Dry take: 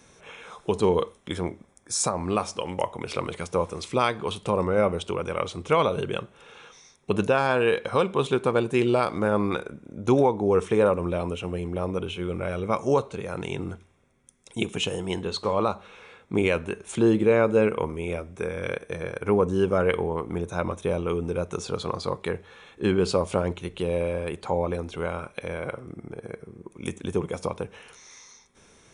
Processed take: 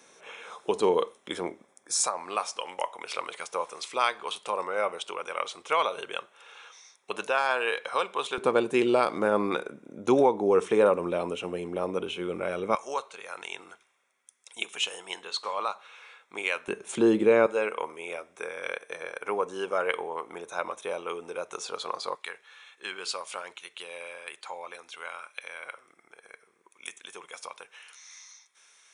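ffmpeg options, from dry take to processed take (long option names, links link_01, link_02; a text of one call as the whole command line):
ffmpeg -i in.wav -af "asetnsamples=nb_out_samples=441:pad=0,asendcmd='2 highpass f 770;8.38 highpass f 270;12.75 highpass f 1000;16.68 highpass f 250;17.46 highpass f 680;22.15 highpass f 1400',highpass=350" out.wav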